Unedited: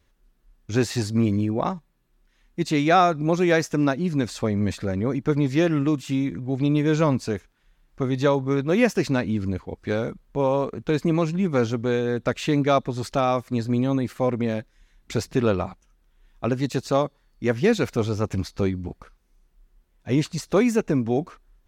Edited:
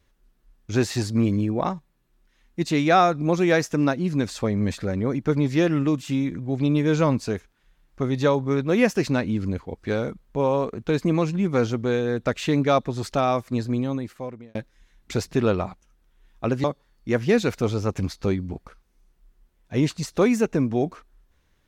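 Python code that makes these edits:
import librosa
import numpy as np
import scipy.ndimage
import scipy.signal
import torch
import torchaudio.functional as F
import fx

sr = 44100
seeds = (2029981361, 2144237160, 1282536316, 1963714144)

y = fx.edit(x, sr, fx.fade_out_span(start_s=13.54, length_s=1.01),
    fx.cut(start_s=16.64, length_s=0.35), tone=tone)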